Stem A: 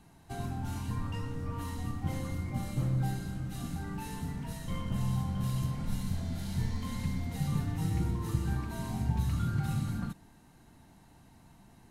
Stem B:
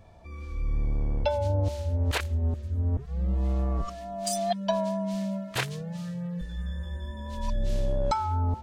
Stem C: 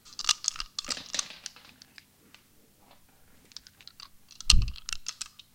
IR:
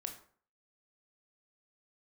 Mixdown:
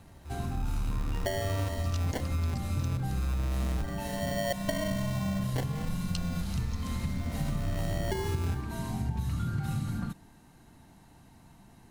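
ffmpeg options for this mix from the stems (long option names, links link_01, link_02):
-filter_complex "[0:a]volume=2dB[link_01];[1:a]adynamicsmooth=sensitivity=3.5:basefreq=530,acrusher=samples=35:mix=1:aa=0.000001,volume=-3dB,asplit=2[link_02][link_03];[link_03]volume=-5.5dB[link_04];[2:a]adelay=1650,volume=-16dB[link_05];[3:a]atrim=start_sample=2205[link_06];[link_04][link_06]afir=irnorm=-1:irlink=0[link_07];[link_01][link_02][link_05][link_07]amix=inputs=4:normalize=0,acompressor=threshold=-27dB:ratio=6"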